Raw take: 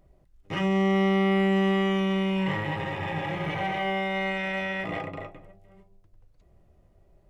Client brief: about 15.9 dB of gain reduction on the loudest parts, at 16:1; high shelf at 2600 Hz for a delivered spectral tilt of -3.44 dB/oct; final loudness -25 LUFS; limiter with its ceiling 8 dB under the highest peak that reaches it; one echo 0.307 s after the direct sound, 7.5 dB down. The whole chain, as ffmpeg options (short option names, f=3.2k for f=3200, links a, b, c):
-af "highshelf=f=2.6k:g=8.5,acompressor=threshold=-35dB:ratio=16,alimiter=level_in=9.5dB:limit=-24dB:level=0:latency=1,volume=-9.5dB,aecho=1:1:307:0.422,volume=16dB"